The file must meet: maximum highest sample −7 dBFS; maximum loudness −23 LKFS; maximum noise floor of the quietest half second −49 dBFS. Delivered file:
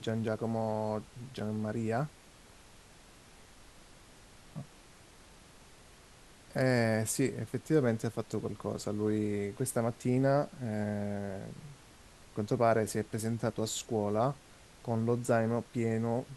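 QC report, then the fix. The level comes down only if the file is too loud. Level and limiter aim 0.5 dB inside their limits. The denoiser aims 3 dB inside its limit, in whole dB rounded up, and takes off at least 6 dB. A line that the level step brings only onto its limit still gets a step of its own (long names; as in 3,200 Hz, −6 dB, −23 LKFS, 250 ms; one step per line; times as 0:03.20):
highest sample −13.5 dBFS: in spec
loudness −33.0 LKFS: in spec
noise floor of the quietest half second −57 dBFS: in spec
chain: no processing needed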